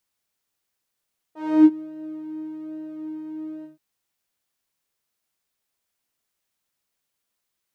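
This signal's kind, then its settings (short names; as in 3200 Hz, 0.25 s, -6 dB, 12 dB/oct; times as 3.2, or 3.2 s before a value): synth patch with pulse-width modulation D#4, sub -23.5 dB, filter bandpass, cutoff 130 Hz, Q 2.4, filter envelope 2.5 oct, filter decay 0.38 s, attack 0.297 s, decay 0.05 s, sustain -21.5 dB, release 0.14 s, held 2.29 s, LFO 1.2 Hz, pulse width 41%, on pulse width 14%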